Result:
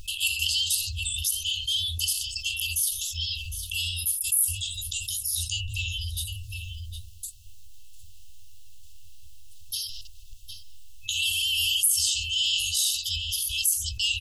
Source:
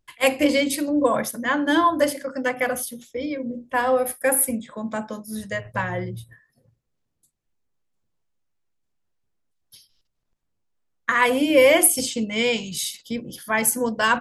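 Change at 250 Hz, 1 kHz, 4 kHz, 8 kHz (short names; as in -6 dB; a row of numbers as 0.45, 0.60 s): under -40 dB, under -40 dB, +7.0 dB, +1.0 dB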